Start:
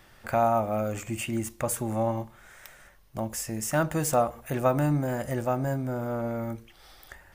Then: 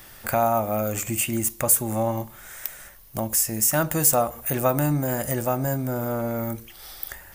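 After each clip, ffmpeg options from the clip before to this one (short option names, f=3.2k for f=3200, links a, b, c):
-filter_complex "[0:a]aemphasis=mode=production:type=50fm,asplit=2[a][b];[b]acompressor=threshold=-32dB:ratio=6,volume=0dB[c];[a][c]amix=inputs=2:normalize=0"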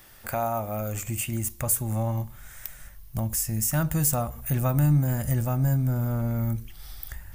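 -af "asubboost=boost=8:cutoff=150,volume=-6dB"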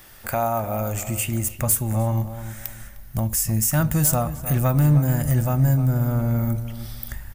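-filter_complex "[0:a]volume=16.5dB,asoftclip=hard,volume=-16.5dB,asplit=2[a][b];[b]adelay=305,lowpass=f=2.1k:p=1,volume=-11.5dB,asplit=2[c][d];[d]adelay=305,lowpass=f=2.1k:p=1,volume=0.29,asplit=2[e][f];[f]adelay=305,lowpass=f=2.1k:p=1,volume=0.29[g];[a][c][e][g]amix=inputs=4:normalize=0,volume=4.5dB"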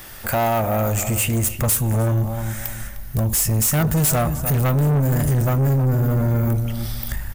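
-af "asoftclip=type=tanh:threshold=-24dB,volume=8.5dB"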